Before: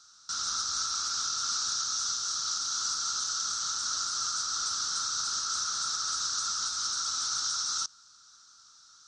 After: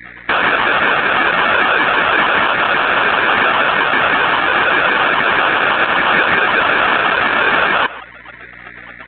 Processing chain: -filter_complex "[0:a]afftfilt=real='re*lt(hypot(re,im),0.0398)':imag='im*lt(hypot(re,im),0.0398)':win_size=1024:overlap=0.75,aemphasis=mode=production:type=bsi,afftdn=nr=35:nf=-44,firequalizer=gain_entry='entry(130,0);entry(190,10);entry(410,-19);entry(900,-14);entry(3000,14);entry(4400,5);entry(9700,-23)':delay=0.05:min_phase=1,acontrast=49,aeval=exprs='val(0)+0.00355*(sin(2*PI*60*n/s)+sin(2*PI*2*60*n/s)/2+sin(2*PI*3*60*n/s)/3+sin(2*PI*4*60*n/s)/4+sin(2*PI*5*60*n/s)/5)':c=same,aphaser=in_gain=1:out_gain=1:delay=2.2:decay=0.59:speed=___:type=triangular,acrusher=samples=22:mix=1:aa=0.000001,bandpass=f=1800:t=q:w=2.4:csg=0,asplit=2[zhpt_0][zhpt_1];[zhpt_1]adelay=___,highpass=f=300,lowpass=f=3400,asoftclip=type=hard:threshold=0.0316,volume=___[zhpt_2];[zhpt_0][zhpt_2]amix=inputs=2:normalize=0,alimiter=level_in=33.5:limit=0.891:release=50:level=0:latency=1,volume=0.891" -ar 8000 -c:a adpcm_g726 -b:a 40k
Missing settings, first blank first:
0.34, 140, 0.0794